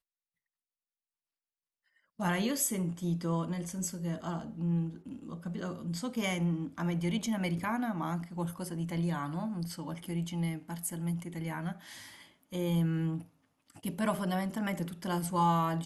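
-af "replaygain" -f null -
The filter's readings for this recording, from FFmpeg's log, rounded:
track_gain = +15.2 dB
track_peak = 0.106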